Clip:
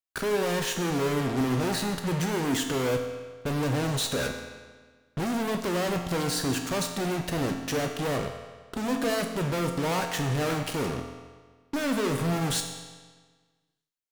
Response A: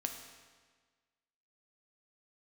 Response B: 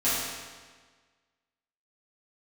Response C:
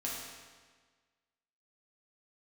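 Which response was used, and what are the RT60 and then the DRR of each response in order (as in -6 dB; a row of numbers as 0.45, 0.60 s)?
A; 1.5, 1.5, 1.5 s; 3.5, -14.0, -6.0 dB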